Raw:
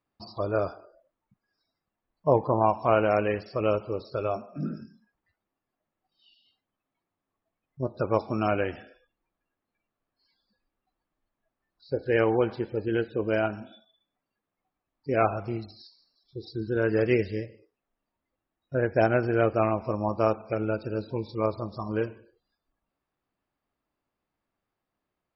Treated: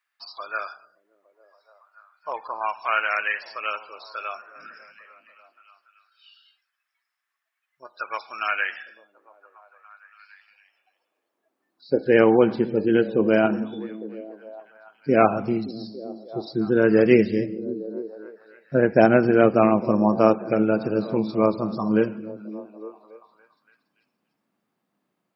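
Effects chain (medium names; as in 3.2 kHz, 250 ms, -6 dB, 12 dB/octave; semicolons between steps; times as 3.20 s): high-pass sweep 1.7 kHz -> 190 Hz, 9.70–12.14 s; repeats whose band climbs or falls 285 ms, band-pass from 160 Hz, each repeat 0.7 oct, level -10 dB; trim +5.5 dB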